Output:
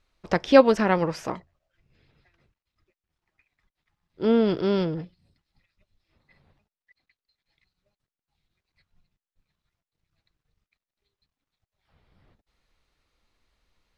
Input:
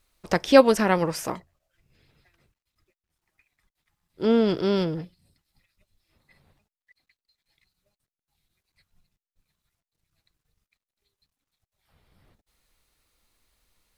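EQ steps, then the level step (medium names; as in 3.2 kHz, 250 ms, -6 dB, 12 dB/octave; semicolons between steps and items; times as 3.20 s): distance through air 56 m; treble shelf 5.6 kHz -4.5 dB; peaking EQ 8.9 kHz -5 dB 0.48 oct; 0.0 dB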